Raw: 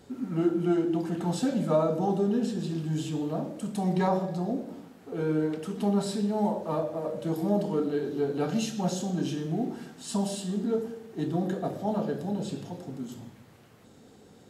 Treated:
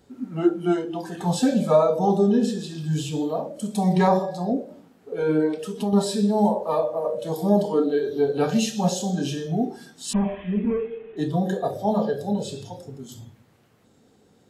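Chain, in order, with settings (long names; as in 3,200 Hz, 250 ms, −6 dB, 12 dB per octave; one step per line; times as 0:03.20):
0:10.13–0:11.17: linear delta modulator 16 kbit/s, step −44.5 dBFS
noise reduction from a noise print of the clip's start 12 dB
0:05.51–0:05.93: downward compressor 2 to 1, threshold −34 dBFS, peak gain reduction 7.5 dB
level +7.5 dB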